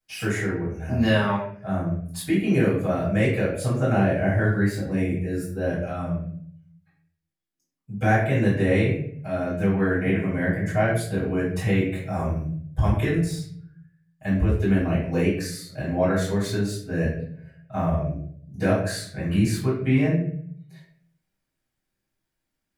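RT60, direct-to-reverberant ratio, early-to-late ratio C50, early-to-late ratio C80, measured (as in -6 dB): 0.60 s, -13.5 dB, 3.5 dB, 7.0 dB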